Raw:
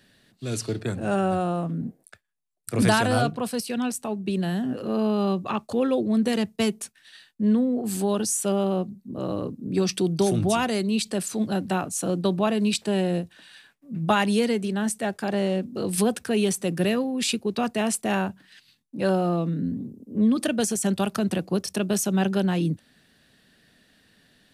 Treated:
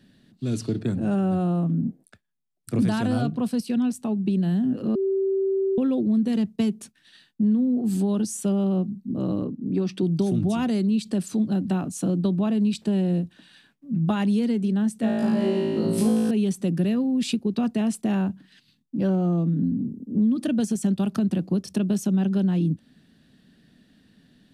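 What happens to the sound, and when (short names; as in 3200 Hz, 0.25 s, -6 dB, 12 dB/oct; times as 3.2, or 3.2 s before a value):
4.95–5.78 bleep 387 Hz -20 dBFS
9.44–10.03 tone controls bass -6 dB, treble -11 dB
15.01–16.31 flutter echo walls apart 3.1 m, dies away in 1.4 s
18.99–19.62 decimation joined by straight lines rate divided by 6×
whole clip: EQ curve 110 Hz 0 dB, 170 Hz +5 dB, 260 Hz +5 dB, 470 Hz -5 dB, 2200 Hz -9 dB, 3300 Hz -6 dB, 11000 Hz -11 dB; compressor 3:1, threshold -24 dBFS; gain +3 dB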